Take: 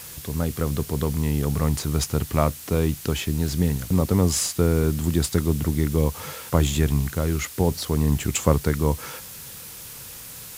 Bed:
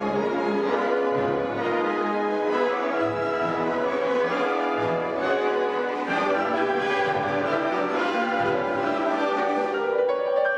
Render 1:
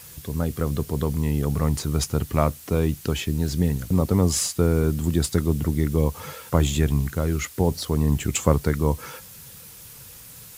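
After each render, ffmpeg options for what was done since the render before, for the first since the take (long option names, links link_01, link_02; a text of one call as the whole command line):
ffmpeg -i in.wav -af "afftdn=noise_reduction=6:noise_floor=-40" out.wav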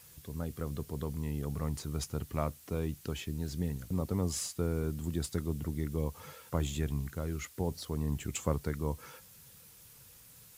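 ffmpeg -i in.wav -af "volume=-12.5dB" out.wav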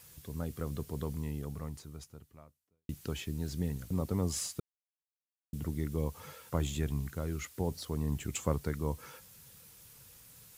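ffmpeg -i in.wav -filter_complex "[0:a]asplit=4[link_01][link_02][link_03][link_04];[link_01]atrim=end=2.89,asetpts=PTS-STARTPTS,afade=type=out:start_time=1.13:duration=1.76:curve=qua[link_05];[link_02]atrim=start=2.89:end=4.6,asetpts=PTS-STARTPTS,afade=type=in:duration=0.004:curve=hsin,afade=type=out:start_time=1.706:duration=0.004:curve=hsin[link_06];[link_03]atrim=start=4.6:end=5.53,asetpts=PTS-STARTPTS,volume=0[link_07];[link_04]atrim=start=5.53,asetpts=PTS-STARTPTS,afade=type=in:duration=0.004:curve=hsin[link_08];[link_05][link_06][link_07][link_08]concat=n=4:v=0:a=1" out.wav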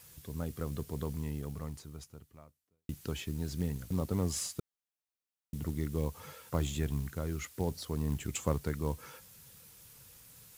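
ffmpeg -i in.wav -af "acrusher=bits=6:mode=log:mix=0:aa=0.000001" out.wav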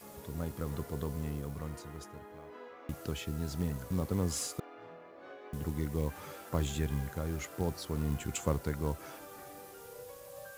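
ffmpeg -i in.wav -i bed.wav -filter_complex "[1:a]volume=-26.5dB[link_01];[0:a][link_01]amix=inputs=2:normalize=0" out.wav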